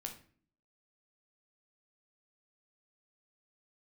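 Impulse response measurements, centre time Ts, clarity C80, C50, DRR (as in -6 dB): 15 ms, 14.5 dB, 9.5 dB, 3.0 dB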